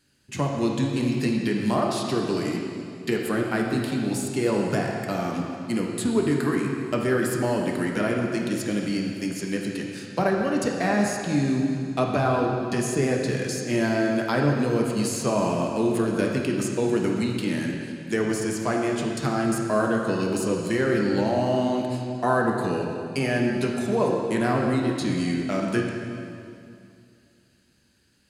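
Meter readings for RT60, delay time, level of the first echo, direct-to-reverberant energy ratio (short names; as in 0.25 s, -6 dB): 2.5 s, none, none, -0.5 dB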